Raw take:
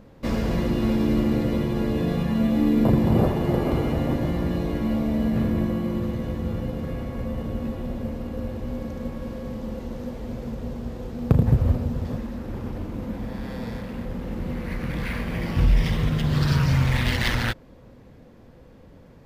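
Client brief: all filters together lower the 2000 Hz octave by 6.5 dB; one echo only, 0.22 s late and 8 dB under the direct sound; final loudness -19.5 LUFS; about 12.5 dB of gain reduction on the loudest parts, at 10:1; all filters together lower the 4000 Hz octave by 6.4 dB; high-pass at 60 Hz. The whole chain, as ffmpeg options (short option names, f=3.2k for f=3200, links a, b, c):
-af "highpass=60,equalizer=f=2k:t=o:g=-6.5,equalizer=f=4k:t=o:g=-6,acompressor=threshold=-26dB:ratio=10,aecho=1:1:220:0.398,volume=12dB"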